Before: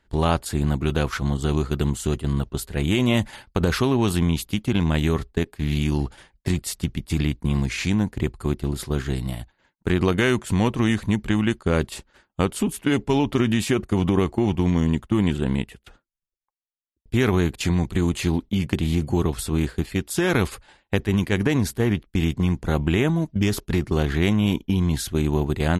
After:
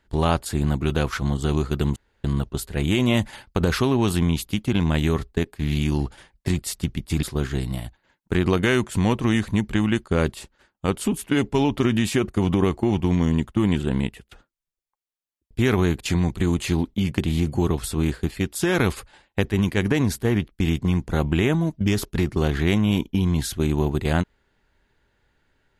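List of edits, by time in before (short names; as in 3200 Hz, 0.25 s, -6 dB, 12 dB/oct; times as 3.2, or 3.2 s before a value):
1.96–2.24 room tone
7.23–8.78 cut
11.92–12.43 gain -3.5 dB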